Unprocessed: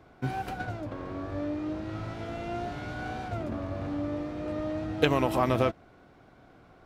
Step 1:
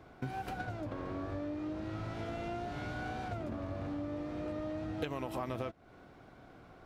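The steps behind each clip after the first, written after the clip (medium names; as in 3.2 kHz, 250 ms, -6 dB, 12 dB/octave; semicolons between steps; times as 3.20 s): compression 5:1, threshold -36 dBFS, peak gain reduction 16.5 dB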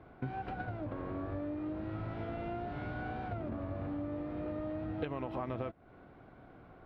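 distance through air 360 m; trim +1 dB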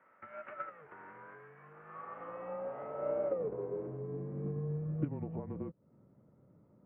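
band-pass sweep 1.8 kHz -> 290 Hz, 1.55–4.79 s; mistuned SSB -160 Hz 330–2900 Hz; upward expansion 1.5:1, over -58 dBFS; trim +11.5 dB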